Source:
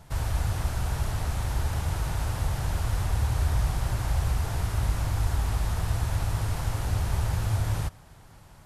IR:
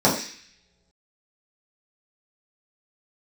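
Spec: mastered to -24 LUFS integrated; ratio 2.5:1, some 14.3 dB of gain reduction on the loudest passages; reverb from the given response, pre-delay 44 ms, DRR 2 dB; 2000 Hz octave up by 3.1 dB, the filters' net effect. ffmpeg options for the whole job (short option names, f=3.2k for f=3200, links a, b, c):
-filter_complex "[0:a]equalizer=f=2k:t=o:g=4,acompressor=threshold=-44dB:ratio=2.5,asplit=2[a][b];[1:a]atrim=start_sample=2205,adelay=44[c];[b][c]afir=irnorm=-1:irlink=0,volume=-21.5dB[d];[a][d]amix=inputs=2:normalize=0,volume=16.5dB"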